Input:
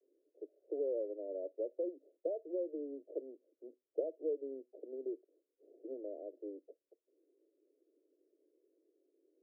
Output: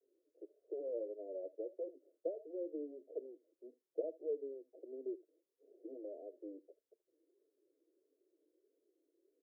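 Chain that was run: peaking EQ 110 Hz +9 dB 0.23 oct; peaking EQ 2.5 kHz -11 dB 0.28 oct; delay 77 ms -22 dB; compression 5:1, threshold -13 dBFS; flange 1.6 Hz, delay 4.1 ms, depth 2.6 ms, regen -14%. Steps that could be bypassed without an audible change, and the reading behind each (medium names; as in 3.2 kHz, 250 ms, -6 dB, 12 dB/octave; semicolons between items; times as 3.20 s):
peaking EQ 110 Hz: input has nothing below 240 Hz; peaking EQ 2.5 kHz: input has nothing above 720 Hz; compression, threshold -13 dBFS: peak at its input -22.0 dBFS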